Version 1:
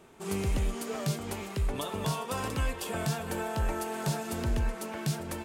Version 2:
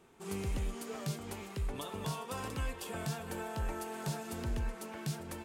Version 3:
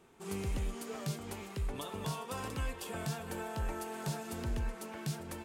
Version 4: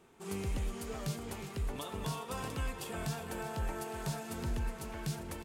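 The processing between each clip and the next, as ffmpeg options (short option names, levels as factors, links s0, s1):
-af "bandreject=f=620:w=12,volume=0.473"
-af anull
-af "aecho=1:1:362|724|1086|1448|1810|2172:0.251|0.141|0.0788|0.0441|0.0247|0.0138"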